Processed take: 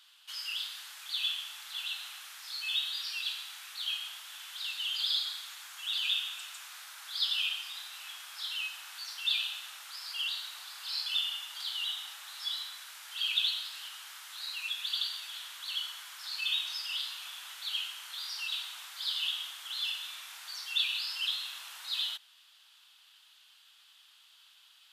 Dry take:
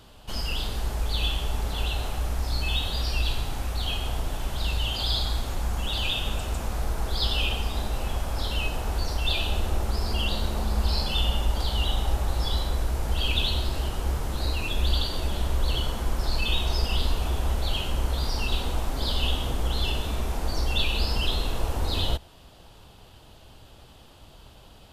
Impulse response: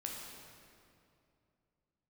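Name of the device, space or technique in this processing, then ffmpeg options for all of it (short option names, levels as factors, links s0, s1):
headphones lying on a table: -af "highpass=f=1400:w=0.5412,highpass=f=1400:w=1.3066,equalizer=f=3500:t=o:w=0.53:g=4.5,volume=0.562"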